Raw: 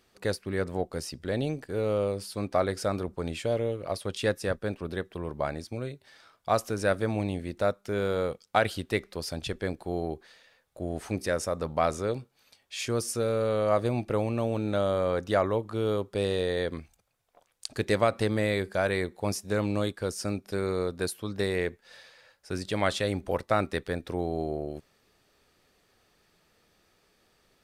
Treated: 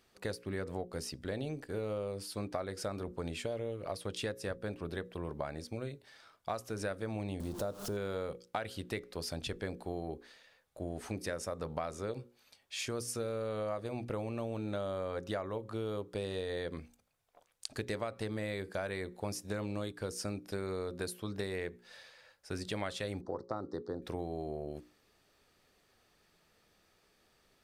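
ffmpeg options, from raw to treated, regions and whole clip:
ffmpeg -i in.wav -filter_complex "[0:a]asettb=1/sr,asplit=3[link_01][link_02][link_03];[link_01]atrim=end=7.404[link_04];[link_02]atrim=start=7.4:end=7.97,asetpts=PTS-STARTPTS,afade=type=in:duration=0.004:curve=qsin,afade=type=out:start_time=0.566:duration=0.004:curve=qsin,aeval=exprs='val(0)+0.5*0.0126*sgn(val(0))':channel_layout=same,equalizer=frequency=2100:width_type=o:width=0.99:gain=-14,acompressor=mode=upward:threshold=-29dB:ratio=2.5:attack=3.2:release=140:knee=2.83:detection=peak[link_05];[link_03]atrim=start=7.966[link_06];[link_04][link_05]acrossfade=duration=0.004:curve1=hsin:curve2=qsin[link_07];[link_07][link_06]acrossfade=duration=0.004:curve1=qsin:curve2=hsin,asettb=1/sr,asplit=3[link_08][link_09][link_10];[link_08]atrim=end=23.214[link_11];[link_09]atrim=start=23.21:end=24.02,asetpts=PTS-STARTPTS,afade=type=in:duration=0.004:curve=qsin,afade=type=out:start_time=0.806:duration=0.004:curve=qsin,acompressor=mode=upward:threshold=-42dB:ratio=2.5:attack=3.2:release=140:knee=2.83:detection=peak,asuperstop=centerf=2600:order=4:qfactor=0.8,highpass=120,equalizer=frequency=190:width_type=q:width=4:gain=-4,equalizer=frequency=340:width_type=q:width=4:gain=4,equalizer=frequency=630:width_type=q:width=4:gain=-6,equalizer=frequency=1600:width_type=q:width=4:gain=-8,equalizer=frequency=2300:width_type=q:width=4:gain=-8,equalizer=frequency=3300:width_type=q:width=4:gain=-7,lowpass=frequency=5100:width=0.5412,lowpass=frequency=5100:width=1.3066[link_12];[link_10]atrim=start=24.016[link_13];[link_11][link_12]acrossfade=duration=0.004:curve1=hsin:curve2=qsin[link_14];[link_14][link_13]acrossfade=duration=0.004:curve1=qsin:curve2=hsin,bandreject=frequency=60:width_type=h:width=6,bandreject=frequency=120:width_type=h:width=6,bandreject=frequency=180:width_type=h:width=6,bandreject=frequency=240:width_type=h:width=6,bandreject=frequency=300:width_type=h:width=6,bandreject=frequency=360:width_type=h:width=6,bandreject=frequency=420:width_type=h:width=6,bandreject=frequency=480:width_type=h:width=6,bandreject=frequency=540:width_type=h:width=6,acompressor=threshold=-31dB:ratio=6,volume=-3dB" out.wav

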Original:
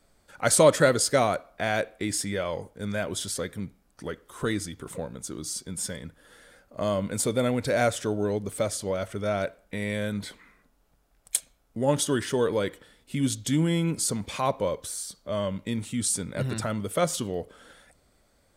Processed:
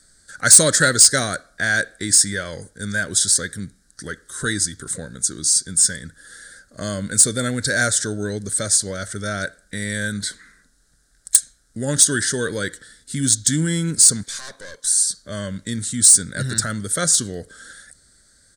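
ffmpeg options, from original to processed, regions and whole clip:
ffmpeg -i in.wav -filter_complex "[0:a]asettb=1/sr,asplit=3[link_01][link_02][link_03];[link_01]atrim=end=14.234[link_04];[link_02]atrim=start=14.23:end=14.87,asetpts=PTS-STARTPTS,afade=type=in:duration=0.004:curve=qsin,afade=type=out:start_time=0.636:duration=0.004:curve=qsin,highpass=frequency=820:poles=1,aeval=exprs='(tanh(56.2*val(0)+0.45)-tanh(0.45))/56.2':channel_layout=same[link_05];[link_03]atrim=start=14.866[link_06];[link_04][link_05]acrossfade=duration=0.004:curve1=hsin:curve2=qsin[link_07];[link_07][link_06]acrossfade=duration=0.004:curve1=qsin:curve2=hsin,firequalizer=gain_entry='entry(120,0);entry(950,-14);entry(1600,11);entry(2500,-12);entry(3900,9);entry(8900,15);entry(13000,-6)':delay=0.05:min_phase=1,acontrast=42,volume=-1dB" out.wav

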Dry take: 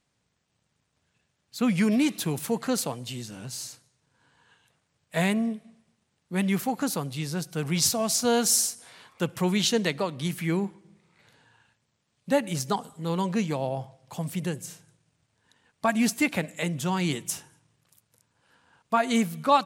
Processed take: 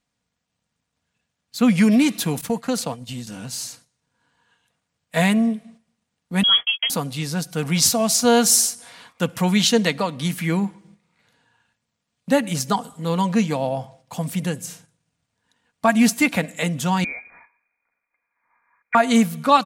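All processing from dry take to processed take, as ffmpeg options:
ffmpeg -i in.wav -filter_complex "[0:a]asettb=1/sr,asplit=3[link_01][link_02][link_03];[link_01]atrim=end=2.414[link_04];[link_02]atrim=start=2.41:end=3.27,asetpts=PTS-STARTPTS,afade=type=in:duration=0.004:curve=qsin,afade=type=out:start_time=0.856:duration=0.004:curve=qsin,agate=range=-33dB:threshold=-32dB:ratio=3:release=100:detection=peak,lowshelf=frequency=230:gain=10.5,acrossover=split=420|8000[link_05][link_06][link_07];[link_05]acompressor=threshold=-34dB:ratio=4[link_08];[link_06]acompressor=threshold=-30dB:ratio=4[link_09];[link_07]acompressor=threshold=-43dB:ratio=4[link_10];[link_08][link_09][link_10]amix=inputs=3:normalize=0[link_11];[link_03]atrim=start=3.266[link_12];[link_04][link_11]acrossfade=duration=0.004:curve1=hsin:curve2=qsin[link_13];[link_13][link_12]acrossfade=duration=0.004:curve1=qsin:curve2=hsin,asettb=1/sr,asplit=3[link_14][link_15][link_16];[link_14]atrim=end=6.434[link_17];[link_15]atrim=start=6.43:end=6.9,asetpts=PTS-STARTPTS,afade=type=in:duration=0.004:curve=qsin,afade=type=out:start_time=0.466:duration=0.004:curve=qsin,agate=range=-39dB:threshold=-33dB:ratio=16:release=100:detection=peak,lowpass=frequency=3000:width_type=q:width=0.5098,lowpass=frequency=3000:width_type=q:width=0.6013,lowpass=frequency=3000:width_type=q:width=0.9,lowpass=frequency=3000:width_type=q:width=2.563,afreqshift=-3500,asplit=2[link_18][link_19];[link_19]adelay=17,volume=-12dB[link_20];[link_18][link_20]amix=inputs=2:normalize=0,atrim=end_sample=20727[link_21];[link_16]atrim=start=6.896[link_22];[link_17][link_21]acrossfade=duration=0.004:curve1=hsin:curve2=qsin[link_23];[link_23][link_22]acrossfade=duration=0.004:curve1=qsin:curve2=hsin,asettb=1/sr,asplit=3[link_24][link_25][link_26];[link_24]atrim=end=17.044[link_27];[link_25]atrim=start=17.04:end=18.95,asetpts=PTS-STARTPTS,afade=type=in:duration=0.004:curve=qsin,afade=type=out:start_time=1.906:duration=0.004:curve=qsin,highpass=180,acompressor=threshold=-43dB:ratio=1.5:attack=3.2:release=140:knee=1:detection=peak,lowpass=frequency=2200:width_type=q:width=0.5098,lowpass=frequency=2200:width_type=q:width=0.6013,lowpass=frequency=2200:width_type=q:width=0.9,lowpass=frequency=2200:width_type=q:width=2.563,afreqshift=-2600[link_28];[link_26]atrim=start=18.946[link_29];[link_27][link_28]acrossfade=duration=0.004:curve1=hsin:curve2=qsin[link_30];[link_30][link_29]acrossfade=duration=0.004:curve1=qsin:curve2=hsin,agate=range=-9dB:threshold=-54dB:ratio=16:detection=peak,equalizer=frequency=390:width=6.1:gain=-8,aecho=1:1:4.2:0.31,volume=6dB" out.wav

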